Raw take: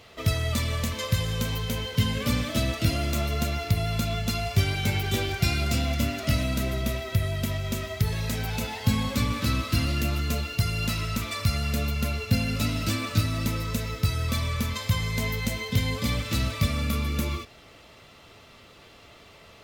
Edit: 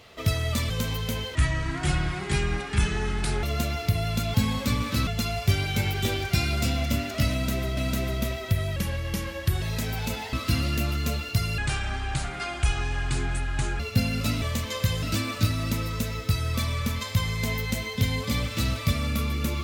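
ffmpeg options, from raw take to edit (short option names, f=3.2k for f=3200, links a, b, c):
-filter_complex "[0:a]asplit=14[a][b][c][d][e][f][g][h][i][j][k][l][m][n];[a]atrim=end=0.702[o];[b]atrim=start=1.308:end=1.964[p];[c]atrim=start=1.96:end=3.25,asetpts=PTS-STARTPTS,asetrate=27342,aresample=44100,atrim=end_sample=91756,asetpts=PTS-STARTPTS[q];[d]atrim=start=3.246:end=4.162[r];[e]atrim=start=8.838:end=9.572[s];[f]atrim=start=4.158:end=6.862[t];[g]atrim=start=6.408:end=7.404[u];[h]atrim=start=7.4:end=8.13,asetpts=PTS-STARTPTS,asetrate=37485,aresample=44100,atrim=end_sample=37874,asetpts=PTS-STARTPTS[v];[i]atrim=start=8.126:end=8.842[w];[j]atrim=start=9.568:end=10.824[x];[k]atrim=start=10.82:end=12.15,asetpts=PTS-STARTPTS,asetrate=26460,aresample=44100[y];[l]atrim=start=12.146:end=12.772[z];[m]atrim=start=0.698:end=1.312[aa];[n]atrim=start=12.768[ab];[o][p]acrossfade=d=0.004:c1=hsin:c2=hsin[ac];[ac][q]acrossfade=d=0.004:c1=hsin:c2=hsin[ad];[ad][r]acrossfade=d=0.004:c1=hsin:c2=hsin[ae];[ae][s]acrossfade=d=0.004:c1=hsin:c2=hsin[af];[af][t]acrossfade=d=0.004:c1=hsin:c2=hsin[ag];[ag][u]acrossfade=d=0.004:c1=hsin:c2=hsin[ah];[ah][v]acrossfade=d=0.004:c1=hsin:c2=hsin[ai];[ai][w]acrossfade=d=0.004:c1=hsin:c2=hsin[aj];[aj][x]acrossfade=d=0.004:c1=hsin:c2=hsin[ak];[ak][y]acrossfade=d=0.004:c1=hsin:c2=hsin[al];[al][z]acrossfade=d=0.004:c1=hsin:c2=hsin[am];[am][aa]acrossfade=d=0.004:c1=hsin:c2=hsin[an];[an][ab]acrossfade=d=0.004:c1=hsin:c2=hsin"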